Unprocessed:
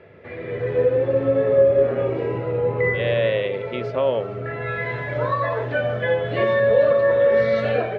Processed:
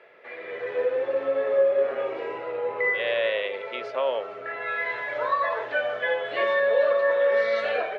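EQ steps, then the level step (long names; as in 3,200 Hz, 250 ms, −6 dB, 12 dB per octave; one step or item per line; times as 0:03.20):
high-pass filter 680 Hz 12 dB per octave
0.0 dB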